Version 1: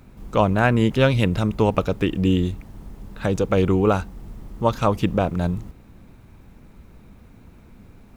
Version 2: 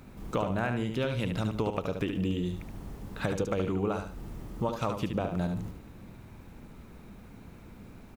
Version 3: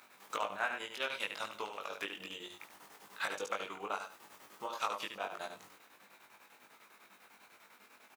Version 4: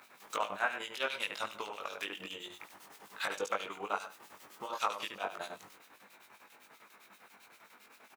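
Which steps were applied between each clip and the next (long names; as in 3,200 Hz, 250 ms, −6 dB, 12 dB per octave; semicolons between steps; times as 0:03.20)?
low-shelf EQ 81 Hz −6.5 dB; downward compressor 10 to 1, threshold −27 dBFS, peak gain reduction 15.5 dB; on a send: repeating echo 73 ms, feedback 29%, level −6.5 dB
square-wave tremolo 10 Hz, depth 60%, duty 60%; high-pass filter 1,000 Hz 12 dB per octave; double-tracking delay 20 ms −2.5 dB; level +1 dB
two-band tremolo in antiphase 7.6 Hz, depth 70%, crossover 2,300 Hz; level +5 dB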